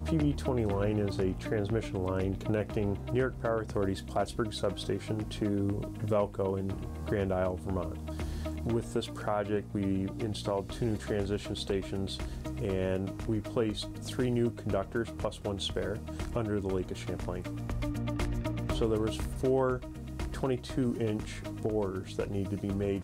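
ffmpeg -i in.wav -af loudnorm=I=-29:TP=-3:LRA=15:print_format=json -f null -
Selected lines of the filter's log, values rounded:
"input_i" : "-33.2",
"input_tp" : "-16.8",
"input_lra" : "1.7",
"input_thresh" : "-43.2",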